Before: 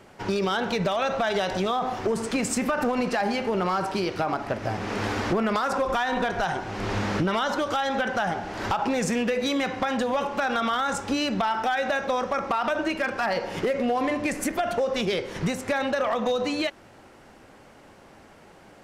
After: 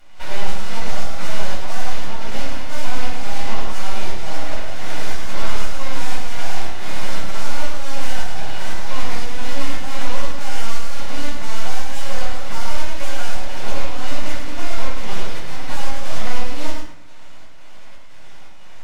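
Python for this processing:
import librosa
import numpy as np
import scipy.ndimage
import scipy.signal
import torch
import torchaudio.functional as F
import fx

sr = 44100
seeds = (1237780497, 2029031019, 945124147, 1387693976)

p1 = fx.delta_mod(x, sr, bps=32000, step_db=-41.5)
p2 = scipy.signal.sosfilt(scipy.signal.butter(2, 250.0, 'highpass', fs=sr, output='sos'), p1)
p3 = fx.peak_eq(p2, sr, hz=1700.0, db=7.0, octaves=0.85)
p4 = fx.hum_notches(p3, sr, base_hz=60, count=9)
p5 = fx.cheby_harmonics(p4, sr, harmonics=(8,), levels_db=(-10,), full_scale_db=-16.5)
p6 = np.abs(p5)
p7 = fx.volume_shaper(p6, sr, bpm=117, per_beat=1, depth_db=-7, release_ms=149.0, shape='slow start')
p8 = p7 + fx.echo_single(p7, sr, ms=107, db=-6.0, dry=0)
p9 = fx.room_shoebox(p8, sr, seeds[0], volume_m3=590.0, walls='furnished', distance_m=7.3)
y = p9 * 10.0 ** (-10.0 / 20.0)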